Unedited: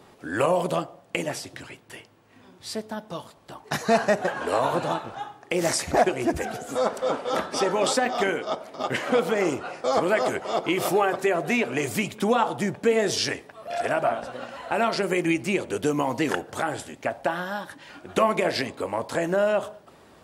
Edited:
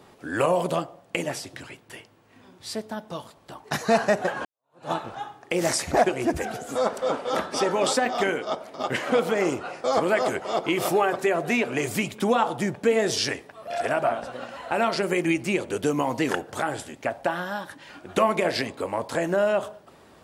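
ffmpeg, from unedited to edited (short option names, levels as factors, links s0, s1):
-filter_complex "[0:a]asplit=2[s0][s1];[s0]atrim=end=4.45,asetpts=PTS-STARTPTS,afade=t=out:st=4.446:d=0.004:c=hsin[s2];[s1]atrim=start=4.45,asetpts=PTS-STARTPTS,afade=t=in:d=0.46:c=exp[s3];[s2][s3]concat=n=2:v=0:a=1"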